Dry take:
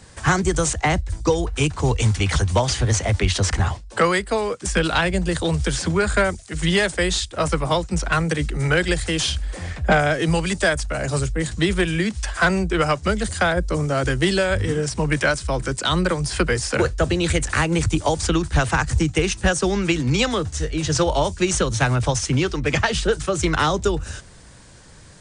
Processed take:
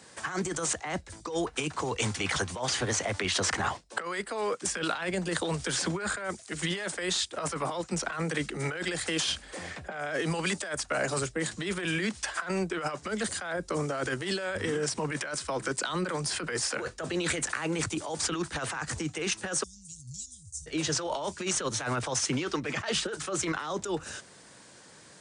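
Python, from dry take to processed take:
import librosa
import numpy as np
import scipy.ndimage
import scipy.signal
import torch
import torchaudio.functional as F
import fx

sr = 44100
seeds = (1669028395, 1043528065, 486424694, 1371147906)

y = fx.cheby2_bandstop(x, sr, low_hz=460.0, high_hz=1700.0, order=4, stop_db=80, at=(19.62, 20.66), fade=0.02)
y = scipy.signal.sosfilt(scipy.signal.butter(2, 230.0, 'highpass', fs=sr, output='sos'), y)
y = fx.dynamic_eq(y, sr, hz=1300.0, q=0.97, threshold_db=-33.0, ratio=4.0, max_db=4)
y = fx.over_compress(y, sr, threshold_db=-24.0, ratio=-1.0)
y = y * 10.0 ** (-7.0 / 20.0)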